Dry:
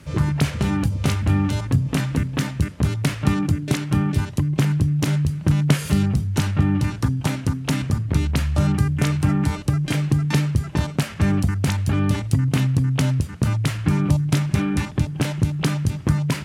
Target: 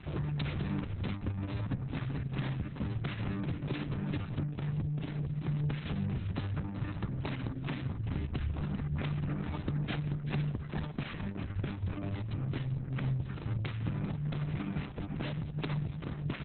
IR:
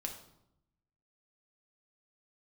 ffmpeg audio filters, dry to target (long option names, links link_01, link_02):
-filter_complex "[0:a]acompressor=threshold=-27dB:ratio=12,aresample=11025,asoftclip=type=tanh:threshold=-29dB,aresample=44100,asplit=2[link_01][link_02];[link_02]adelay=390.7,volume=-7dB,highshelf=frequency=4000:gain=-8.79[link_03];[link_01][link_03]amix=inputs=2:normalize=0" -ar 48000 -c:a libopus -b:a 6k